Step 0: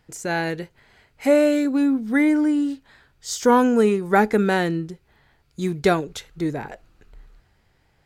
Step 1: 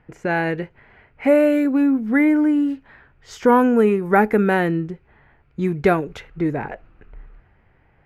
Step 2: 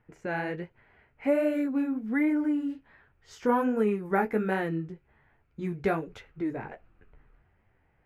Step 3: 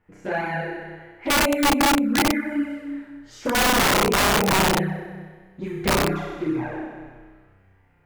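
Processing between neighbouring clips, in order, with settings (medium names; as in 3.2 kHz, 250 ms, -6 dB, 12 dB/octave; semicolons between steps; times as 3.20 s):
level-controlled noise filter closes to 2.9 kHz, open at -17 dBFS; high-order bell 5.6 kHz -13.5 dB; in parallel at -1 dB: compression, threshold -27 dBFS, peak gain reduction 14.5 dB
flange 1.3 Hz, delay 8.6 ms, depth 8.7 ms, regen -25%; trim -7 dB
flutter echo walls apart 5.4 m, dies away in 1.5 s; touch-sensitive flanger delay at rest 11.8 ms, full sweep at -19.5 dBFS; integer overflow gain 18.5 dB; trim +5 dB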